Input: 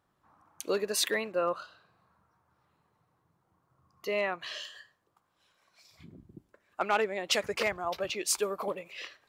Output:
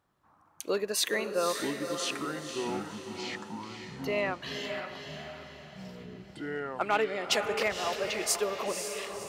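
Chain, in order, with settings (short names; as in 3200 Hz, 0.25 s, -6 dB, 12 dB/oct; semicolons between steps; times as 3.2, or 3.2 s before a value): echoes that change speed 0.641 s, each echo -6 st, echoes 3, each echo -6 dB; diffused feedback echo 0.524 s, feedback 44%, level -6.5 dB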